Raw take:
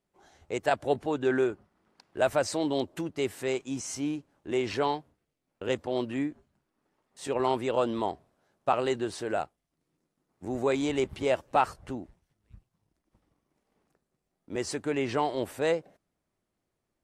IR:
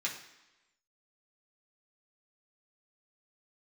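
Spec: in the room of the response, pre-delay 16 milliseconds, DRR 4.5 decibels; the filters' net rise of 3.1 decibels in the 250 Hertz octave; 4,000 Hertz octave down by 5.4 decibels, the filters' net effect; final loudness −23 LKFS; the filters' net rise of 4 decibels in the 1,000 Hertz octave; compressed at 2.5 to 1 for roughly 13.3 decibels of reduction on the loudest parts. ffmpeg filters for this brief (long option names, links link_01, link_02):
-filter_complex "[0:a]equalizer=frequency=250:width_type=o:gain=3.5,equalizer=frequency=1000:width_type=o:gain=5.5,equalizer=frequency=4000:width_type=o:gain=-8,acompressor=threshold=-37dB:ratio=2.5,asplit=2[link_01][link_02];[1:a]atrim=start_sample=2205,adelay=16[link_03];[link_02][link_03]afir=irnorm=-1:irlink=0,volume=-8.5dB[link_04];[link_01][link_04]amix=inputs=2:normalize=0,volume=14dB"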